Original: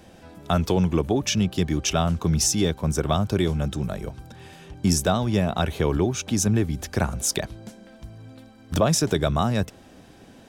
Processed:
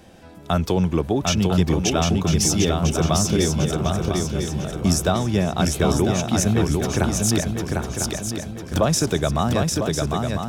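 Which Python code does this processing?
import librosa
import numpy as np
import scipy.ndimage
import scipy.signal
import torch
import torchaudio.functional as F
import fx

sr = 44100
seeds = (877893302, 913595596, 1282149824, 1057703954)

y = fx.echo_swing(x, sr, ms=1000, ratio=3, feedback_pct=40, wet_db=-3.5)
y = F.gain(torch.from_numpy(y), 1.0).numpy()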